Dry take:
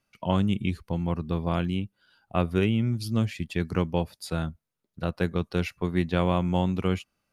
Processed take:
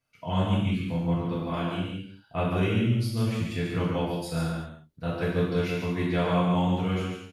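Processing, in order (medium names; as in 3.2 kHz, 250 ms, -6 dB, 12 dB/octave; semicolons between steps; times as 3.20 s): 1.32–1.81 s: bass shelf 130 Hz -10 dB; delay 140 ms -5 dB; gated-style reverb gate 270 ms falling, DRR -8 dB; trim -9 dB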